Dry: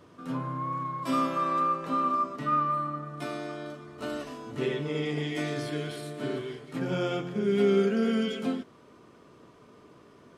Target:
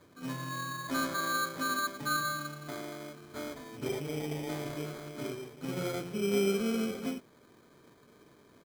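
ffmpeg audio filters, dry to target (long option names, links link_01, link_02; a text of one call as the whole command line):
ffmpeg -i in.wav -af "acrusher=samples=16:mix=1:aa=0.000001,atempo=1.2,volume=-5dB" out.wav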